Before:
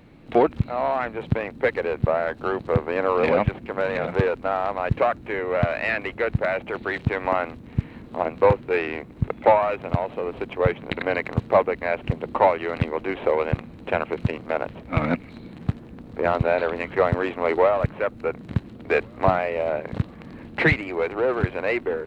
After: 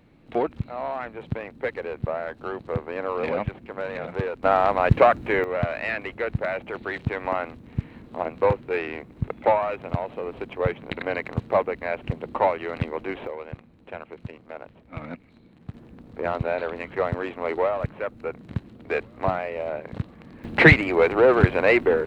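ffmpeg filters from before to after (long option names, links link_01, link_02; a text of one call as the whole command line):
ffmpeg -i in.wav -af "asetnsamples=nb_out_samples=441:pad=0,asendcmd='4.43 volume volume 5dB;5.44 volume volume -3.5dB;13.27 volume volume -13.5dB;15.74 volume volume -5dB;20.44 volume volume 6dB',volume=-6.5dB" out.wav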